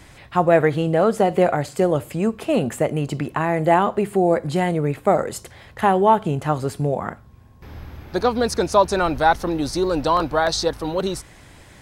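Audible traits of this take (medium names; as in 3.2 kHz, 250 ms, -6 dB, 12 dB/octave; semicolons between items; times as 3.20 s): noise floor -47 dBFS; spectral tilt -5.0 dB/octave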